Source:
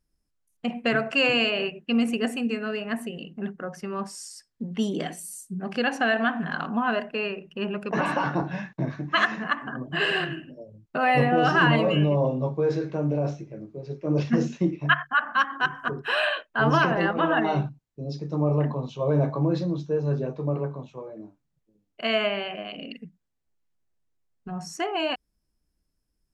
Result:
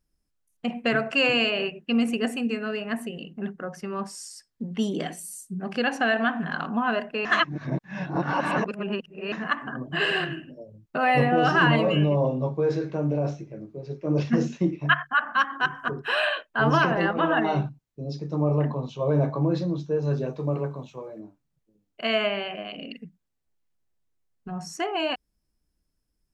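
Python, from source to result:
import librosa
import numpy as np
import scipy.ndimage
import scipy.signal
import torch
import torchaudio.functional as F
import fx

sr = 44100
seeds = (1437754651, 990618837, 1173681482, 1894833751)

y = fx.high_shelf(x, sr, hz=2800.0, db=8.0, at=(20.02, 21.2))
y = fx.edit(y, sr, fx.reverse_span(start_s=7.25, length_s=2.07), tone=tone)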